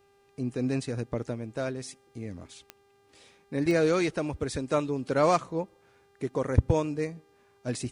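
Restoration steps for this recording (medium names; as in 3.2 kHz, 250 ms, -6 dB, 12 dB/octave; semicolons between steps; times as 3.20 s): de-click; de-hum 399 Hz, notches 38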